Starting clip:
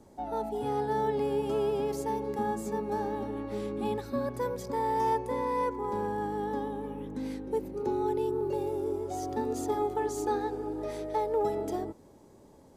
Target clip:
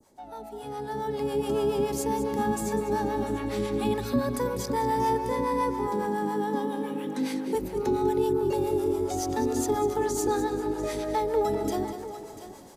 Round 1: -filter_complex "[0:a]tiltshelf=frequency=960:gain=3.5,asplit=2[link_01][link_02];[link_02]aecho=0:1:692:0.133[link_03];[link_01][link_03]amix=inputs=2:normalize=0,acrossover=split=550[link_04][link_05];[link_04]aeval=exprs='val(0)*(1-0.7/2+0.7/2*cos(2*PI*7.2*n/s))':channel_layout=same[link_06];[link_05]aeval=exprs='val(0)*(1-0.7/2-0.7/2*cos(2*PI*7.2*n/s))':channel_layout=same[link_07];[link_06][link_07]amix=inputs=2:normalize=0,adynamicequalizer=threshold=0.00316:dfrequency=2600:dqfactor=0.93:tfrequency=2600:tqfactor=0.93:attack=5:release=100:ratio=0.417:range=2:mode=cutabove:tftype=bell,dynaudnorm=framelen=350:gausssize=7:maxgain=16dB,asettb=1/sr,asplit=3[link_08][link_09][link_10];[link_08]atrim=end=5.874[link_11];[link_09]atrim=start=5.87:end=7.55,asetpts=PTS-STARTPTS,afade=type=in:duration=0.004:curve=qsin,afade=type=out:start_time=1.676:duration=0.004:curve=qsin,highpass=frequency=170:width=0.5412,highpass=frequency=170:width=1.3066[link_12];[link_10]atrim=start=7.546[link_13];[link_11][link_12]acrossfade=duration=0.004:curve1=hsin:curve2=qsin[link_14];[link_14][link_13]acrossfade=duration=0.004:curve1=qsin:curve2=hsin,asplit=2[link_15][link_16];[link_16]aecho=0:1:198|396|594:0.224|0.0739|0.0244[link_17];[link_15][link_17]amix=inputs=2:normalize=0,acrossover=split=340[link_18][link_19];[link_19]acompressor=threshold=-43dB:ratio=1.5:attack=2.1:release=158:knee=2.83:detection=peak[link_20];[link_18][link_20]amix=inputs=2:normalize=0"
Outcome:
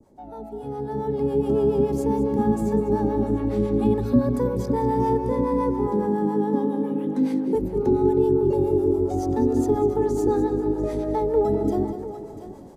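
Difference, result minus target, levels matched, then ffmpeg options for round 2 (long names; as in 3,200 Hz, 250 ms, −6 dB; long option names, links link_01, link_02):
1,000 Hz band −5.5 dB
-filter_complex "[0:a]tiltshelf=frequency=960:gain=-6,asplit=2[link_01][link_02];[link_02]aecho=0:1:692:0.133[link_03];[link_01][link_03]amix=inputs=2:normalize=0,acrossover=split=550[link_04][link_05];[link_04]aeval=exprs='val(0)*(1-0.7/2+0.7/2*cos(2*PI*7.2*n/s))':channel_layout=same[link_06];[link_05]aeval=exprs='val(0)*(1-0.7/2-0.7/2*cos(2*PI*7.2*n/s))':channel_layout=same[link_07];[link_06][link_07]amix=inputs=2:normalize=0,adynamicequalizer=threshold=0.00316:dfrequency=2600:dqfactor=0.93:tfrequency=2600:tqfactor=0.93:attack=5:release=100:ratio=0.417:range=2:mode=cutabove:tftype=bell,dynaudnorm=framelen=350:gausssize=7:maxgain=16dB,asettb=1/sr,asplit=3[link_08][link_09][link_10];[link_08]atrim=end=5.874[link_11];[link_09]atrim=start=5.87:end=7.55,asetpts=PTS-STARTPTS,afade=type=in:duration=0.004:curve=qsin,afade=type=out:start_time=1.676:duration=0.004:curve=qsin,highpass=frequency=170:width=0.5412,highpass=frequency=170:width=1.3066[link_12];[link_10]atrim=start=7.546[link_13];[link_11][link_12]acrossfade=duration=0.004:curve1=hsin:curve2=qsin[link_14];[link_14][link_13]acrossfade=duration=0.004:curve1=qsin:curve2=hsin,asplit=2[link_15][link_16];[link_16]aecho=0:1:198|396|594:0.224|0.0739|0.0244[link_17];[link_15][link_17]amix=inputs=2:normalize=0,acrossover=split=340[link_18][link_19];[link_19]acompressor=threshold=-43dB:ratio=1.5:attack=2.1:release=158:knee=2.83:detection=peak[link_20];[link_18][link_20]amix=inputs=2:normalize=0"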